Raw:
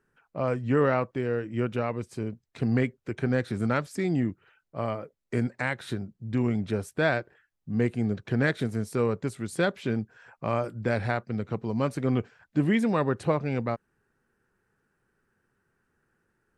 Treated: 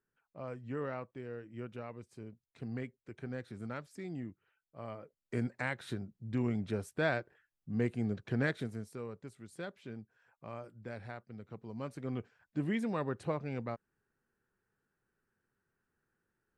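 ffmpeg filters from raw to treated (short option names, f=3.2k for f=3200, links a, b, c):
-af "volume=0.5dB,afade=t=in:st=4.79:d=0.67:silence=0.375837,afade=t=out:st=8.41:d=0.59:silence=0.298538,afade=t=in:st=11.4:d=1.32:silence=0.421697"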